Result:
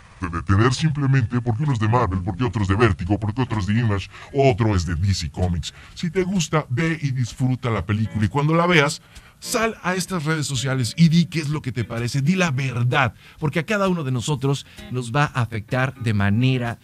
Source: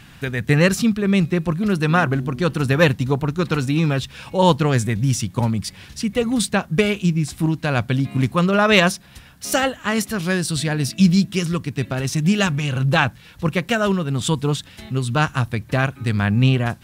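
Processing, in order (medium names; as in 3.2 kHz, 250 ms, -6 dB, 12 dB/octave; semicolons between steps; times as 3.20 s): pitch bend over the whole clip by -7 st ending unshifted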